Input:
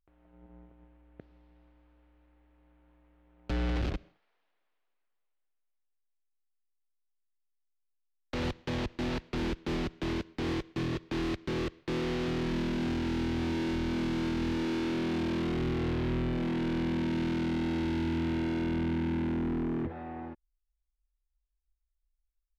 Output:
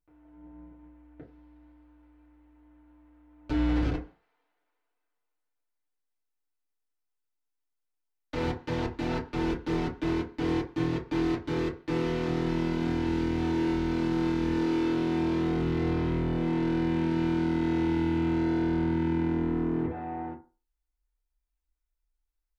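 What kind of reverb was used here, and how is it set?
feedback delay network reverb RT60 0.34 s, low-frequency decay 0.85×, high-frequency decay 0.4×, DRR −6 dB
level −4.5 dB

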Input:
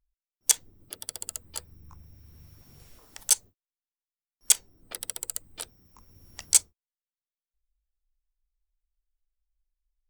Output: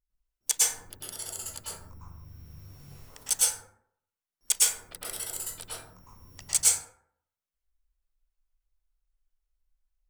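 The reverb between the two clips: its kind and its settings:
dense smooth reverb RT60 0.67 s, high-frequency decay 0.45×, pre-delay 95 ms, DRR −9 dB
level −6.5 dB

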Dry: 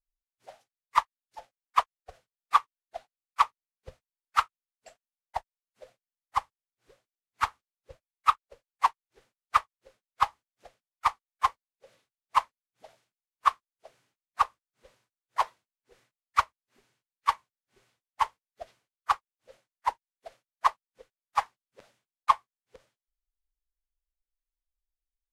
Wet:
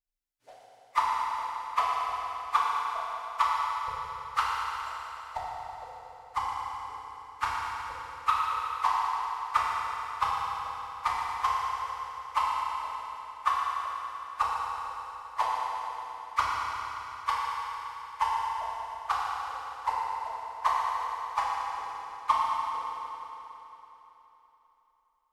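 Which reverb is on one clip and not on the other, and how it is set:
feedback delay network reverb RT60 3.6 s, high-frequency decay 0.9×, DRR −6.5 dB
level −5.5 dB

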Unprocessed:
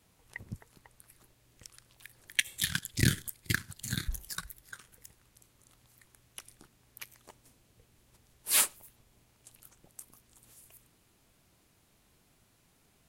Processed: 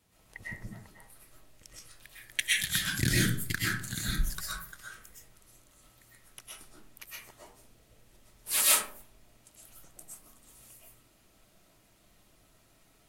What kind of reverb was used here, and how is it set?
comb and all-pass reverb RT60 0.51 s, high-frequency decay 0.5×, pre-delay 85 ms, DRR −7 dB
level −3.5 dB

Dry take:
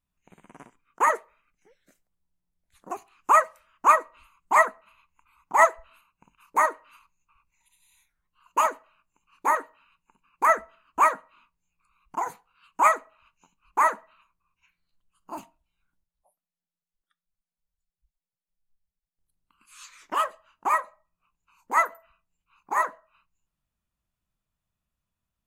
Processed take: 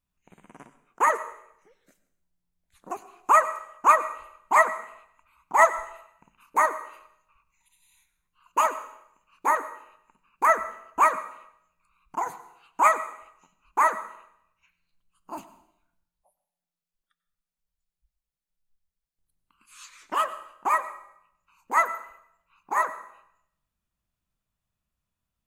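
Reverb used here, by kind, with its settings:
dense smooth reverb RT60 0.74 s, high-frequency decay 0.95×, pre-delay 80 ms, DRR 14 dB

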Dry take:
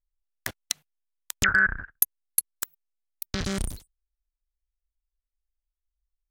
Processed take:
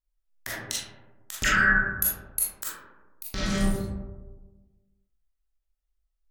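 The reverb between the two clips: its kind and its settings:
comb and all-pass reverb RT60 1.3 s, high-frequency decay 0.3×, pre-delay 0 ms, DRR −9 dB
level −6.5 dB

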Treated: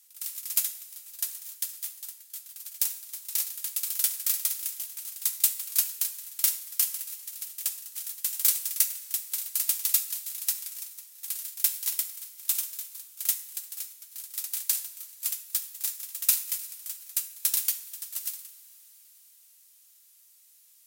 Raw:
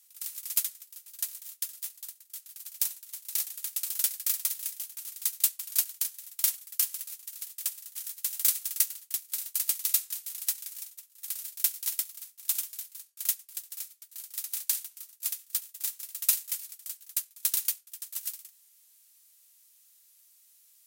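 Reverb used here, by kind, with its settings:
coupled-rooms reverb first 0.55 s, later 4.9 s, from −17 dB, DRR 8 dB
level +1.5 dB

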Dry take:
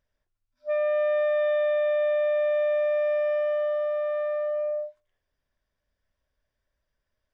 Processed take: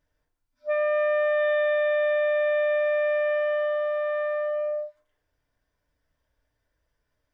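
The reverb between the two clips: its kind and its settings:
feedback delay network reverb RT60 0.5 s, low-frequency decay 1×, high-frequency decay 0.45×, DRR −2.5 dB

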